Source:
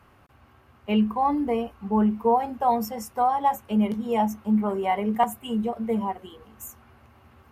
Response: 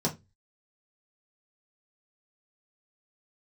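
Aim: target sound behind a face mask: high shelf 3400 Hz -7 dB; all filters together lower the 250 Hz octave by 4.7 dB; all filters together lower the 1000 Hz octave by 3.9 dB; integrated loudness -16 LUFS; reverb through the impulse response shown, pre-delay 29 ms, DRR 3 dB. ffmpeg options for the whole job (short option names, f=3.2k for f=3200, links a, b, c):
-filter_complex "[0:a]equalizer=f=250:t=o:g=-5.5,equalizer=f=1k:t=o:g=-4.5,asplit=2[a][b];[1:a]atrim=start_sample=2205,adelay=29[c];[b][c]afir=irnorm=-1:irlink=0,volume=-11dB[d];[a][d]amix=inputs=2:normalize=0,highshelf=f=3.4k:g=-7,volume=6.5dB"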